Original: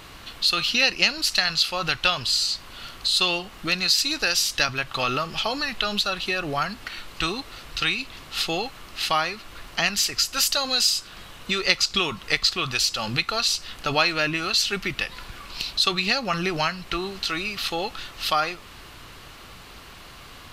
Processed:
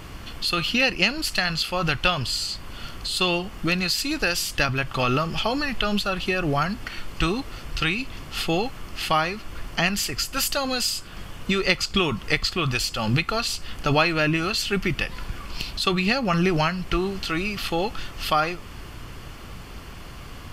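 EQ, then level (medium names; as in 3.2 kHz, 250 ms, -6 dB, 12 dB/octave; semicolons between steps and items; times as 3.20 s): dynamic bell 5.7 kHz, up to -7 dB, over -37 dBFS, Q 2.3; bass shelf 370 Hz +10 dB; band-stop 3.9 kHz, Q 6.4; 0.0 dB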